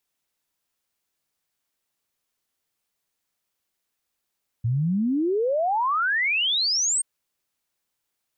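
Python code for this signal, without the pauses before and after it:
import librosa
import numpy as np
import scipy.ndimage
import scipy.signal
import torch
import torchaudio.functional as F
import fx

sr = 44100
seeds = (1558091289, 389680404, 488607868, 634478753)

y = fx.ess(sr, length_s=2.38, from_hz=110.0, to_hz=8700.0, level_db=-20.0)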